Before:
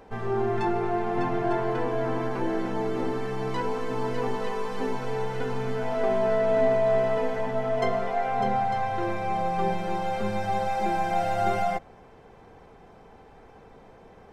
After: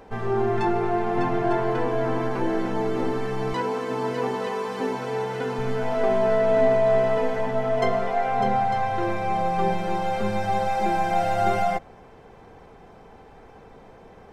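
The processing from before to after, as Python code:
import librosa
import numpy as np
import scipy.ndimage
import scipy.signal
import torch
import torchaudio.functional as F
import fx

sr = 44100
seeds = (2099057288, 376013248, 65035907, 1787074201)

y = fx.highpass(x, sr, hz=140.0, slope=12, at=(3.53, 5.59))
y = y * 10.0 ** (3.0 / 20.0)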